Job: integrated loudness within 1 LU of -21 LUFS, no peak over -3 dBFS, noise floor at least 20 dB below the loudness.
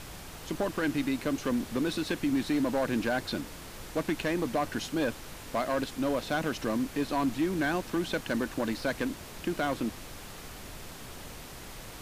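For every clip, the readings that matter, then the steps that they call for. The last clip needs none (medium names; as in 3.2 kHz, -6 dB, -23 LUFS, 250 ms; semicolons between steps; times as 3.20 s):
clipped samples 1.1%; clipping level -22.0 dBFS; noise floor -45 dBFS; noise floor target -51 dBFS; loudness -31.0 LUFS; peak level -22.0 dBFS; loudness target -21.0 LUFS
-> clip repair -22 dBFS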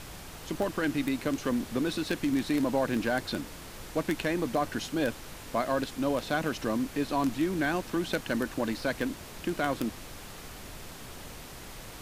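clipped samples 0.0%; noise floor -45 dBFS; noise floor target -51 dBFS
-> noise print and reduce 6 dB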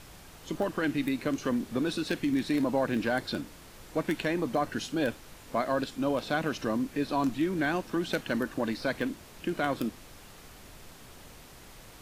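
noise floor -51 dBFS; loudness -31.0 LUFS; peak level -13.5 dBFS; loudness target -21.0 LUFS
-> trim +10 dB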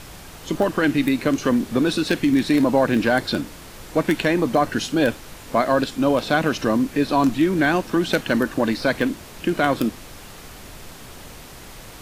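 loudness -21.0 LUFS; peak level -3.5 dBFS; noise floor -41 dBFS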